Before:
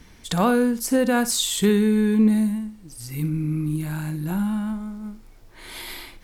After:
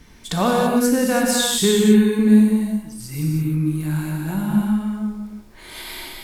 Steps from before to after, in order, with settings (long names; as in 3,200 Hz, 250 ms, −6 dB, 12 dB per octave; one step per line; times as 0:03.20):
reverb whose tail is shaped and stops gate 360 ms flat, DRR −1 dB